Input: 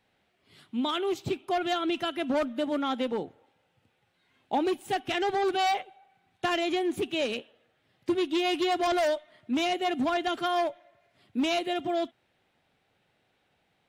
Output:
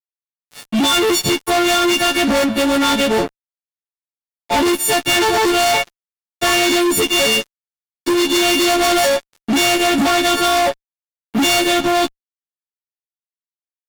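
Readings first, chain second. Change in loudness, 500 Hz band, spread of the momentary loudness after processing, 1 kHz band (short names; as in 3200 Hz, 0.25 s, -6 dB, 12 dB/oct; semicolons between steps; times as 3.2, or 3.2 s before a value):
+14.0 dB, +11.5 dB, 7 LU, +11.0 dB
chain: frequency quantiser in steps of 4 st; fuzz box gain 36 dB, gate -44 dBFS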